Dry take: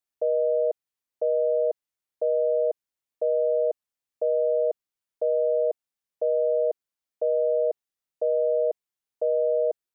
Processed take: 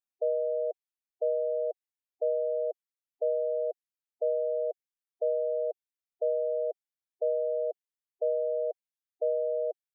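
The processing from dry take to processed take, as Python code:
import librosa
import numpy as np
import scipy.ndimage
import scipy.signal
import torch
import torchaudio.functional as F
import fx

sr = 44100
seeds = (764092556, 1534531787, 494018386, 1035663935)

y = fx.dynamic_eq(x, sr, hz=620.0, q=0.73, threshold_db=-35.0, ratio=4.0, max_db=5)
y = fx.spec_gate(y, sr, threshold_db=-20, keep='strong')
y = fx.dereverb_blind(y, sr, rt60_s=0.91)
y = y * 10.0 ** (-8.0 / 20.0)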